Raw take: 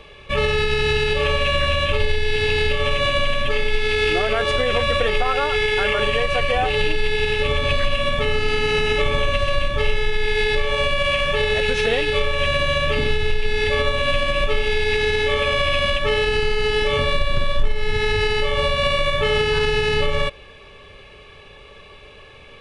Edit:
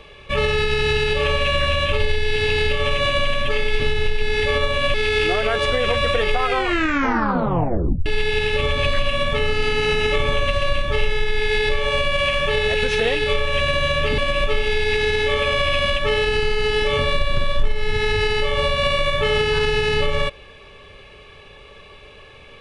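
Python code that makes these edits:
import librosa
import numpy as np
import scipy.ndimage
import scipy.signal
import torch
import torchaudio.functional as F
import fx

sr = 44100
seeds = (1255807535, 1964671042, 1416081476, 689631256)

y = fx.edit(x, sr, fx.tape_stop(start_s=5.28, length_s=1.64),
    fx.move(start_s=13.04, length_s=1.14, to_s=3.8), tone=tone)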